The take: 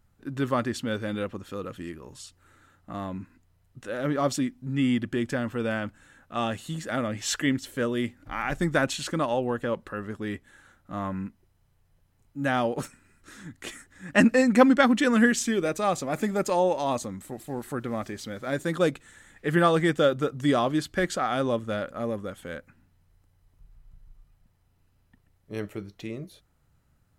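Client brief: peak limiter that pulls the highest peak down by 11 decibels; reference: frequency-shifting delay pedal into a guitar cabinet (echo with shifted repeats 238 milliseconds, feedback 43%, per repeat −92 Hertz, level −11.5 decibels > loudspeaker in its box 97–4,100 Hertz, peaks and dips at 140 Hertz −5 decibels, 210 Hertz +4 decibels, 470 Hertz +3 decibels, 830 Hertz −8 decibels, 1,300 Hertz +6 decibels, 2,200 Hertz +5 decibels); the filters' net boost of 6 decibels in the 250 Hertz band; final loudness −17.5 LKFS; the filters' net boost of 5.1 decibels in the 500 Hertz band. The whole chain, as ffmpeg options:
ffmpeg -i in.wav -filter_complex "[0:a]equalizer=frequency=250:width_type=o:gain=4.5,equalizer=frequency=500:width_type=o:gain=3.5,alimiter=limit=-13dB:level=0:latency=1,asplit=5[link_01][link_02][link_03][link_04][link_05];[link_02]adelay=238,afreqshift=-92,volume=-11.5dB[link_06];[link_03]adelay=476,afreqshift=-184,volume=-18.8dB[link_07];[link_04]adelay=714,afreqshift=-276,volume=-26.2dB[link_08];[link_05]adelay=952,afreqshift=-368,volume=-33.5dB[link_09];[link_01][link_06][link_07][link_08][link_09]amix=inputs=5:normalize=0,highpass=97,equalizer=frequency=140:width_type=q:width=4:gain=-5,equalizer=frequency=210:width_type=q:width=4:gain=4,equalizer=frequency=470:width_type=q:width=4:gain=3,equalizer=frequency=830:width_type=q:width=4:gain=-8,equalizer=frequency=1300:width_type=q:width=4:gain=6,equalizer=frequency=2200:width_type=q:width=4:gain=5,lowpass=frequency=4100:width=0.5412,lowpass=frequency=4100:width=1.3066,volume=7dB" out.wav

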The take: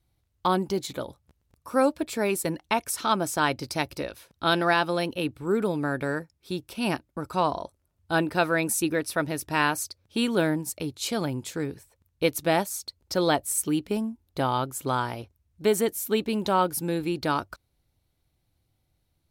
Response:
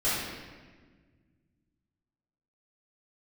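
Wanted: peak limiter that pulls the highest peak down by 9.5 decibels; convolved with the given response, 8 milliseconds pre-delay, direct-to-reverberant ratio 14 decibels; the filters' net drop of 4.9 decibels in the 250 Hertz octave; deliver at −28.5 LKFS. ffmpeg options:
-filter_complex "[0:a]equalizer=frequency=250:width_type=o:gain=-7,alimiter=limit=-18.5dB:level=0:latency=1,asplit=2[link_01][link_02];[1:a]atrim=start_sample=2205,adelay=8[link_03];[link_02][link_03]afir=irnorm=-1:irlink=0,volume=-25.5dB[link_04];[link_01][link_04]amix=inputs=2:normalize=0,volume=2.5dB"

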